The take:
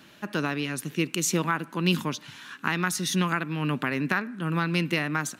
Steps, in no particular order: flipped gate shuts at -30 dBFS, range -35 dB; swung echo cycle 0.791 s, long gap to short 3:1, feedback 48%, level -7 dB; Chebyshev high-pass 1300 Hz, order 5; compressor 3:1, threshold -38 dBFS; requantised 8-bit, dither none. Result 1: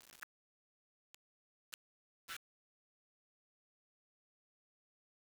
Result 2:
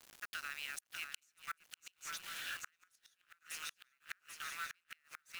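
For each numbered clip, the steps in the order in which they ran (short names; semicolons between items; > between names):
compressor > swung echo > flipped gate > Chebyshev high-pass > requantised; compressor > Chebyshev high-pass > requantised > swung echo > flipped gate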